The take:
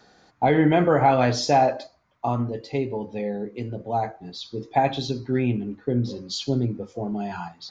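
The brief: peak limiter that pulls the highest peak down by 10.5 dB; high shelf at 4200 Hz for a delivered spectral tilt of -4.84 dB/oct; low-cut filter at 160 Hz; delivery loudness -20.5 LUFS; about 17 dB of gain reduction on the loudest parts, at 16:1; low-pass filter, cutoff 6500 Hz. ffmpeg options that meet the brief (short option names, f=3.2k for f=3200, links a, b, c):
-af "highpass=160,lowpass=6.5k,highshelf=f=4.2k:g=8,acompressor=threshold=-31dB:ratio=16,volume=18.5dB,alimiter=limit=-11dB:level=0:latency=1"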